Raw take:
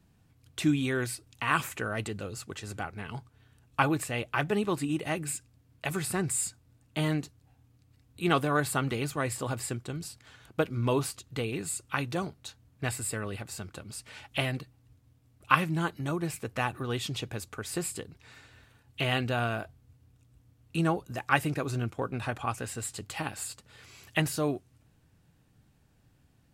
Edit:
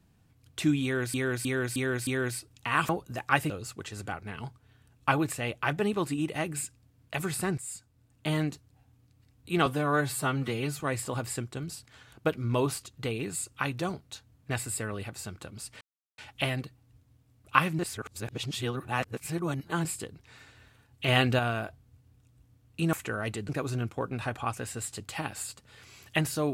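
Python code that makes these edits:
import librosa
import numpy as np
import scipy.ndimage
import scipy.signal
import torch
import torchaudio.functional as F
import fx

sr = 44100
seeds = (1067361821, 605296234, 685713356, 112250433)

y = fx.edit(x, sr, fx.repeat(start_s=0.83, length_s=0.31, count=5),
    fx.swap(start_s=1.65, length_s=0.56, other_s=20.89, other_length_s=0.61),
    fx.fade_in_from(start_s=6.29, length_s=0.68, floor_db=-13.0),
    fx.stretch_span(start_s=8.37, length_s=0.76, factor=1.5),
    fx.insert_silence(at_s=14.14, length_s=0.37),
    fx.reverse_span(start_s=15.75, length_s=2.06),
    fx.clip_gain(start_s=19.04, length_s=0.31, db=5.0), tone=tone)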